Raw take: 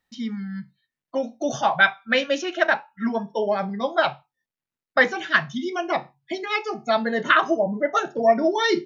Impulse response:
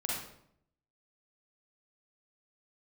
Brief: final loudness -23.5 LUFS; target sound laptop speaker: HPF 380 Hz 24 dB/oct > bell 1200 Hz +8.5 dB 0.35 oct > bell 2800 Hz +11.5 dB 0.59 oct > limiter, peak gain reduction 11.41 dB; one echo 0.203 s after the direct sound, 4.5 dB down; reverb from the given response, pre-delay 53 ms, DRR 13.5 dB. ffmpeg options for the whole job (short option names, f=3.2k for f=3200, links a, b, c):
-filter_complex "[0:a]aecho=1:1:203:0.596,asplit=2[a][b];[1:a]atrim=start_sample=2205,adelay=53[c];[b][c]afir=irnorm=-1:irlink=0,volume=-18dB[d];[a][d]amix=inputs=2:normalize=0,highpass=f=380:w=0.5412,highpass=f=380:w=1.3066,equalizer=f=1.2k:t=o:w=0.35:g=8.5,equalizer=f=2.8k:t=o:w=0.59:g=11.5,volume=-1.5dB,alimiter=limit=-11.5dB:level=0:latency=1"